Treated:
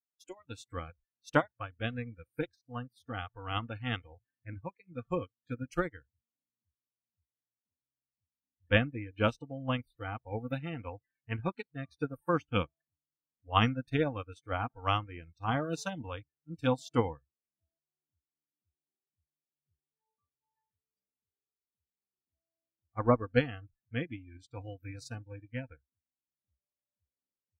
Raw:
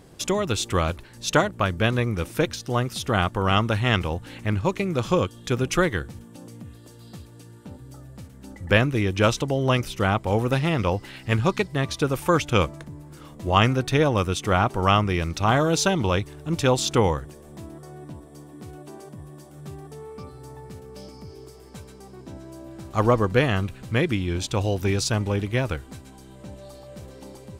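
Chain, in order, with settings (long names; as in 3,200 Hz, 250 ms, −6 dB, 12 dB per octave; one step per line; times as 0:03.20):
noise reduction from a noise print of the clip's start 28 dB
parametric band 240 Hz +5.5 dB 0.58 octaves
expander for the loud parts 2.5 to 1, over −35 dBFS
level −5 dB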